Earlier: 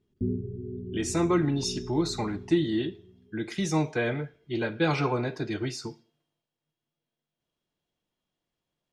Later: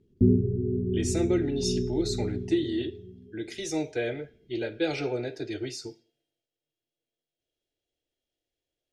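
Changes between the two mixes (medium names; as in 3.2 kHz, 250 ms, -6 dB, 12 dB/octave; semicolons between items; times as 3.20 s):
speech: add static phaser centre 440 Hz, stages 4; background +9.0 dB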